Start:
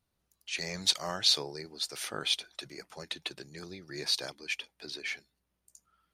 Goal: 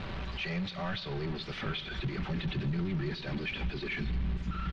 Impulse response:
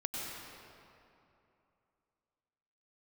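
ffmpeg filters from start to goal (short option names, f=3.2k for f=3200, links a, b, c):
-filter_complex "[0:a]aeval=exprs='val(0)+0.5*0.0422*sgn(val(0))':c=same,alimiter=limit=-18dB:level=0:latency=1:release=261,aecho=1:1:5.2:0.34,asplit=2[a][b];[1:a]atrim=start_sample=2205,asetrate=79380,aresample=44100,adelay=29[c];[b][c]afir=irnorm=-1:irlink=0,volume=-11dB[d];[a][d]amix=inputs=2:normalize=0,asubboost=boost=7:cutoff=210,atempo=1.3,acompressor=threshold=-30dB:ratio=2,lowpass=f=3.4k:w=0.5412,lowpass=f=3.4k:w=1.3066,volume=-3dB"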